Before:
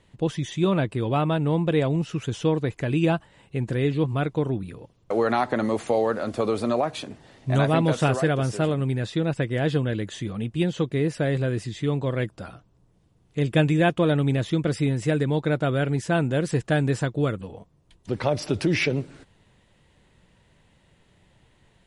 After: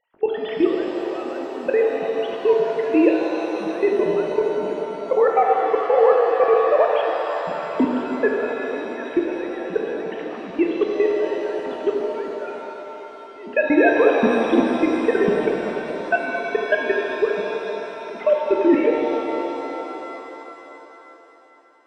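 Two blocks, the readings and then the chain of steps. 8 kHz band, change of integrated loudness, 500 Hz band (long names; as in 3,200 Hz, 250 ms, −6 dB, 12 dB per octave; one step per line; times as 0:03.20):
can't be measured, +3.5 dB, +7.5 dB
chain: three sine waves on the formant tracks
output level in coarse steps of 21 dB
reverb with rising layers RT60 3.9 s, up +7 semitones, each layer −8 dB, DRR −0.5 dB
level +5.5 dB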